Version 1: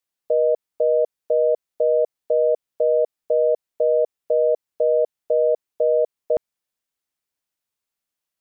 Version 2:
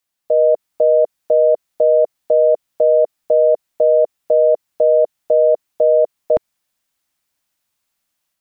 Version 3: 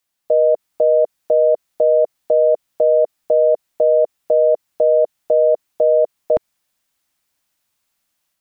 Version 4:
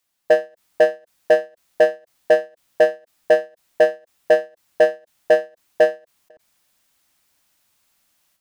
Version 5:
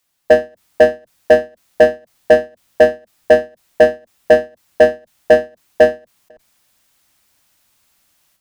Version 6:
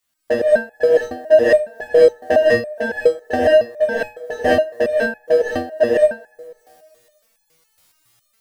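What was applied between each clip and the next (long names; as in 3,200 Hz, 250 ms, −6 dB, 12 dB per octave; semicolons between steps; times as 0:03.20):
automatic gain control gain up to 5 dB; brickwall limiter −9.5 dBFS, peak gain reduction 3 dB; parametric band 430 Hz −8.5 dB 0.32 octaves; level +6 dB
brickwall limiter −9 dBFS, peak gain reduction 3.5 dB; level +2 dB
in parallel at +3 dB: output level in coarse steps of 15 dB; on the sum: gain into a clipping stage and back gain 7.5 dB; every ending faded ahead of time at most 240 dB per second
sub-octave generator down 1 octave, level −4 dB; level +5 dB
delay with a band-pass on its return 86 ms, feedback 74%, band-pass 750 Hz, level −19 dB; reverb whose tail is shaped and stops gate 230 ms rising, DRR −7.5 dB; step-sequenced resonator 7.2 Hz 84–840 Hz; level +4 dB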